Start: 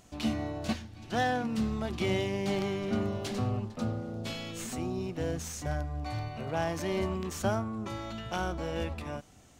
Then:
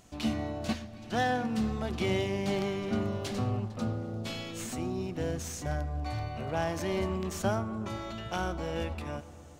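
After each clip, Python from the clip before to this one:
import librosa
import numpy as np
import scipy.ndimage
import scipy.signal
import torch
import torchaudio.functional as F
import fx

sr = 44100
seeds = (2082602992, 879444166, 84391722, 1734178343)

y = fx.echo_filtered(x, sr, ms=123, feedback_pct=82, hz=2700.0, wet_db=-18.0)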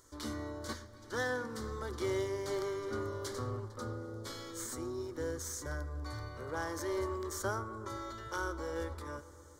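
y = fx.low_shelf(x, sr, hz=430.0, db=-5.5)
y = fx.fixed_phaser(y, sr, hz=710.0, stages=6)
y = F.gain(torch.from_numpy(y), 1.0).numpy()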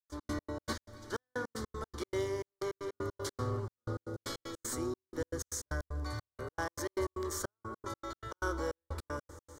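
y = fx.rider(x, sr, range_db=4, speed_s=2.0)
y = fx.step_gate(y, sr, bpm=155, pattern='.x.x.x.x.xxx.', floor_db=-60.0, edge_ms=4.5)
y = F.gain(torch.from_numpy(y), 2.5).numpy()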